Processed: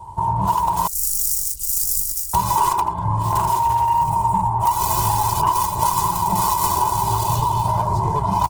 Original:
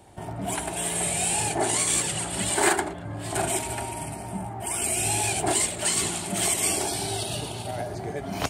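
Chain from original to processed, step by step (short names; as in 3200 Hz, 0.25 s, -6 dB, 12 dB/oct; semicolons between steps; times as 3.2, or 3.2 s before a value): self-modulated delay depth 0.64 ms; dynamic EQ 1500 Hz, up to +4 dB, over -48 dBFS, Q 5.6; comb 2 ms, depth 96%; AGC gain up to 7.5 dB; EQ curve 200 Hz 0 dB, 550 Hz -17 dB, 970 Hz +15 dB, 1500 Hz -19 dB, 6800 Hz -8 dB; in parallel at -5.5 dB: hard clip -13.5 dBFS, distortion -13 dB; 0.87–2.34 on the sum: inverse Chebyshev band-stop 200–1300 Hz, stop band 80 dB; compressor 8:1, threshold -21 dBFS, peak gain reduction 15 dB; gain +5.5 dB; Opus 16 kbps 48000 Hz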